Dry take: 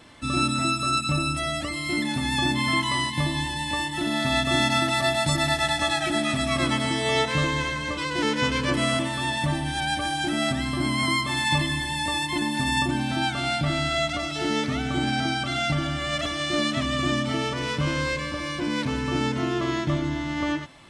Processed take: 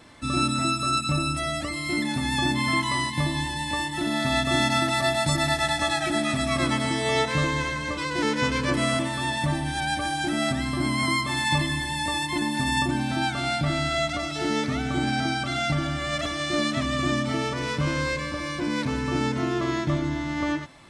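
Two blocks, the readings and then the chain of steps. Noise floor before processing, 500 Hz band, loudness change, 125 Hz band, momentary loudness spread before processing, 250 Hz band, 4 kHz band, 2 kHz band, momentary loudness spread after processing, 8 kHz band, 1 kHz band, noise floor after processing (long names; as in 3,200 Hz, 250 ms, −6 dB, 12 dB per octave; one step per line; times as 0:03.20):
−31 dBFS, 0.0 dB, −0.5 dB, 0.0 dB, 5 LU, 0.0 dB, −2.0 dB, −0.5 dB, 5 LU, 0.0 dB, 0.0 dB, −31 dBFS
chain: parametric band 3,000 Hz −5 dB 0.33 octaves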